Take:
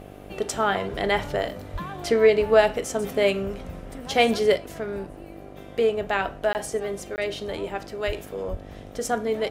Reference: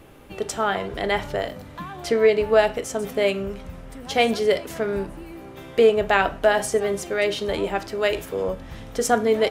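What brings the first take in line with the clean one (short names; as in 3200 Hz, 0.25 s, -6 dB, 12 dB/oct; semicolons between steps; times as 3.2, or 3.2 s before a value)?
de-hum 49.6 Hz, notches 15; 1.72–1.84 HPF 140 Hz 24 dB/oct; 8.06–8.18 HPF 140 Hz 24 dB/oct; 8.5–8.62 HPF 140 Hz 24 dB/oct; interpolate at 6.53/7.16, 19 ms; 4.56 gain correction +6 dB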